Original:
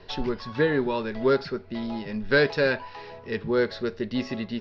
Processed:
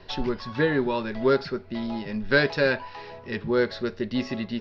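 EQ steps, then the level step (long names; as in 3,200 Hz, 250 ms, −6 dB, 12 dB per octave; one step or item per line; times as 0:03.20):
notch filter 450 Hz, Q 12
+1.0 dB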